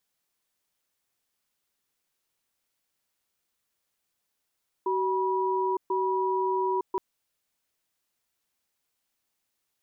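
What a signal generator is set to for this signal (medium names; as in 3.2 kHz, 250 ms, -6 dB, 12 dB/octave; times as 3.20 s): cadence 378 Hz, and 971 Hz, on 0.91 s, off 0.13 s, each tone -26.5 dBFS 2.12 s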